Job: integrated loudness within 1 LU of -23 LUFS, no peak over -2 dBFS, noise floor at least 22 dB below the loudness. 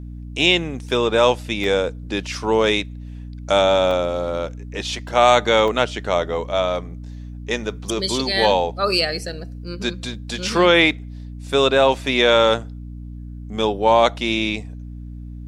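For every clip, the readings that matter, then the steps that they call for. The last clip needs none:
dropouts 4; longest dropout 1.3 ms; hum 60 Hz; highest harmonic 300 Hz; hum level -31 dBFS; loudness -19.0 LUFS; peak level -1.5 dBFS; loudness target -23.0 LUFS
-> interpolate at 1.64/3.91/5.08/5.68 s, 1.3 ms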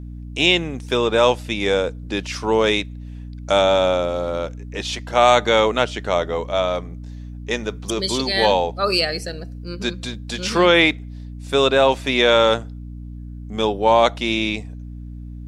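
dropouts 0; hum 60 Hz; highest harmonic 300 Hz; hum level -31 dBFS
-> de-hum 60 Hz, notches 5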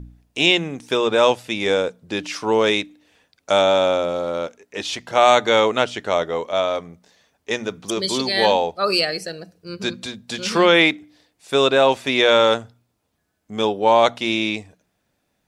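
hum not found; loudness -19.0 LUFS; peak level -1.5 dBFS; loudness target -23.0 LUFS
-> trim -4 dB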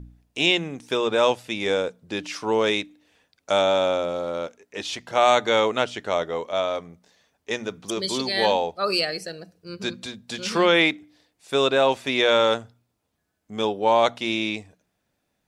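loudness -23.0 LUFS; peak level -5.5 dBFS; noise floor -76 dBFS

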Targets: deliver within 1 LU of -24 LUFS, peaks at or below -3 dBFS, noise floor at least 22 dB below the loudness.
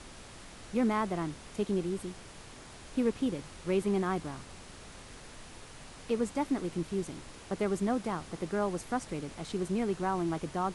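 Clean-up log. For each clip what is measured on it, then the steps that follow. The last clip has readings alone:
noise floor -50 dBFS; noise floor target -56 dBFS; loudness -33.5 LUFS; peak level -18.5 dBFS; loudness target -24.0 LUFS
-> noise print and reduce 6 dB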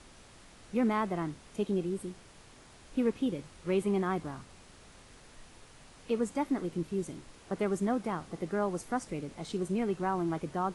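noise floor -56 dBFS; loudness -33.5 LUFS; peak level -19.0 dBFS; loudness target -24.0 LUFS
-> trim +9.5 dB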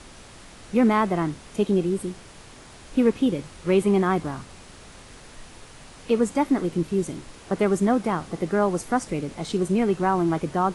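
loudness -24.0 LUFS; peak level -9.5 dBFS; noise floor -46 dBFS

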